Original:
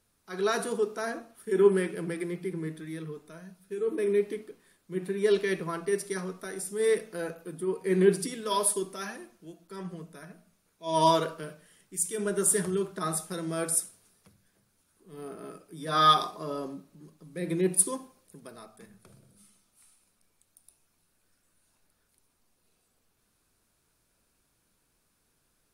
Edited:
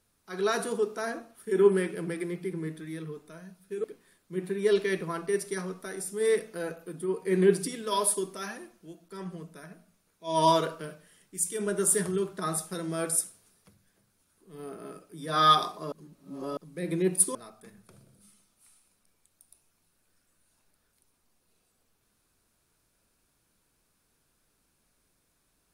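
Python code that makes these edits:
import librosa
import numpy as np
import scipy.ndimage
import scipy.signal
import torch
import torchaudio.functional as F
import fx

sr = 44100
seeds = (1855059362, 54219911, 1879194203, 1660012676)

y = fx.edit(x, sr, fx.cut(start_s=3.84, length_s=0.59),
    fx.reverse_span(start_s=16.51, length_s=0.65),
    fx.cut(start_s=17.94, length_s=0.57), tone=tone)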